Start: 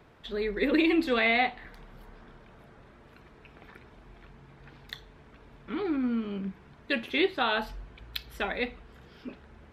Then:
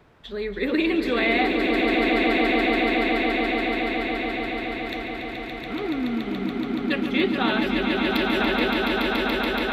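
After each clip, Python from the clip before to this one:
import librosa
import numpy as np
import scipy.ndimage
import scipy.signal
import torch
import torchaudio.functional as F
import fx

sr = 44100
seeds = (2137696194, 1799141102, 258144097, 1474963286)

y = fx.echo_swell(x, sr, ms=142, loudest=8, wet_db=-5)
y = F.gain(torch.from_numpy(y), 1.5).numpy()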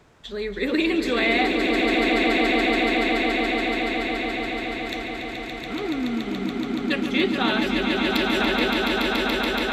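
y = fx.peak_eq(x, sr, hz=7100.0, db=12.0, octaves=0.99)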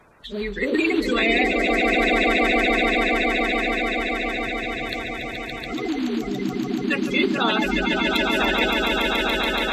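y = fx.spec_quant(x, sr, step_db=30)
y = F.gain(torch.from_numpy(y), 2.0).numpy()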